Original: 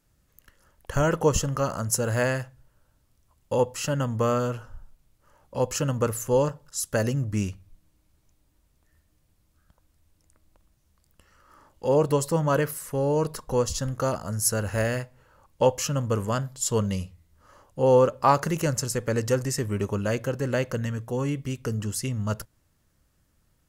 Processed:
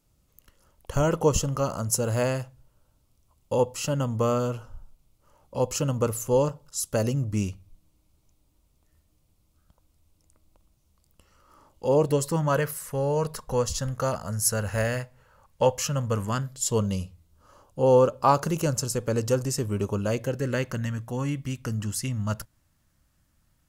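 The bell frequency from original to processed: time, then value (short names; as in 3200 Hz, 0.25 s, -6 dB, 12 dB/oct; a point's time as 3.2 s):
bell -10 dB 0.43 oct
11.97 s 1700 Hz
12.55 s 320 Hz
16.11 s 320 Hz
16.84 s 1900 Hz
20.07 s 1900 Hz
20.8 s 430 Hz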